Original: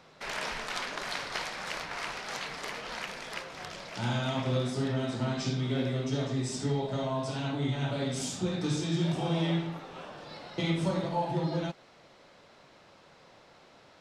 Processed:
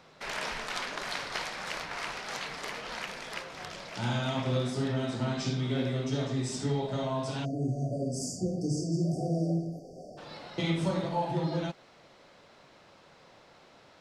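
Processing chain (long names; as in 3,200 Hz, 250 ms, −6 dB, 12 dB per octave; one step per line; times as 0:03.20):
time-frequency box erased 0:07.45–0:10.18, 760–4,500 Hz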